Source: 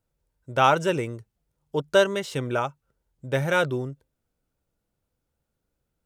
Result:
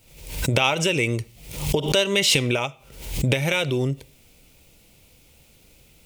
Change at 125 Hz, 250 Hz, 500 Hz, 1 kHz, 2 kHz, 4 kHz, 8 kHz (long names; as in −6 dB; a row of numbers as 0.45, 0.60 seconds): +6.5, +4.5, −0.5, −5.0, +4.0, +11.0, +13.5 decibels